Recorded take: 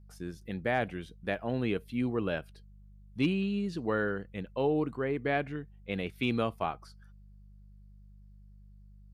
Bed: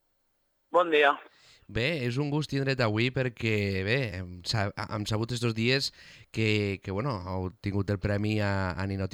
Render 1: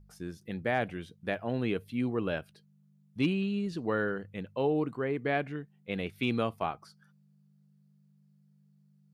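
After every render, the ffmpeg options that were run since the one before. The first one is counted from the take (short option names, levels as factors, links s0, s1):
-af "bandreject=f=50:t=h:w=4,bandreject=f=100:t=h:w=4"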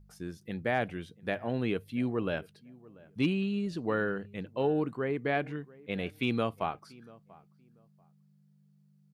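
-filter_complex "[0:a]asplit=2[s0][s1];[s1]adelay=688,lowpass=f=1500:p=1,volume=0.0794,asplit=2[s2][s3];[s3]adelay=688,lowpass=f=1500:p=1,volume=0.23[s4];[s0][s2][s4]amix=inputs=3:normalize=0"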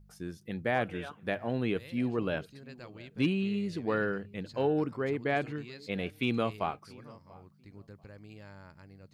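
-filter_complex "[1:a]volume=0.0794[s0];[0:a][s0]amix=inputs=2:normalize=0"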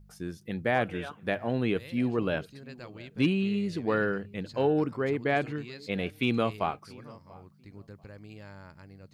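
-af "volume=1.41"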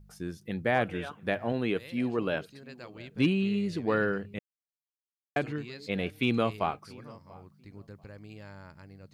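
-filter_complex "[0:a]asettb=1/sr,asplit=3[s0][s1][s2];[s0]atrim=end=1.524[s3];[s1]atrim=start=1.52:end=2.98,asetpts=PTS-STARTPTS,afade=t=in:d=0.004:c=qsin,afade=t=out:st=1.456:d=0.004:c=qsin,lowshelf=f=120:g=-10.5[s4];[s2]atrim=start=2.976[s5];[s3][s4]acrossfade=d=0.004:c1=hsin:c2=qsin[s6];[s6][s5]acrossfade=d=0.004:c1=qsin:c2=hsin,asplit=3[s7][s8][s9];[s7]atrim=end=4.39,asetpts=PTS-STARTPTS,afade=t=out:st=4.386:d=0.004:c=hsin[s10];[s8]atrim=start=4.39:end=5.36,asetpts=PTS-STARTPTS,volume=0[s11];[s9]atrim=start=5.36,asetpts=PTS-STARTPTS,afade=t=in:d=0.004:c=hsin[s12];[s10][s11][s12]concat=n=3:v=0:a=1"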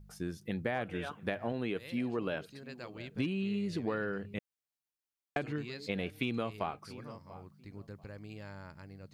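-af "acompressor=threshold=0.0282:ratio=6"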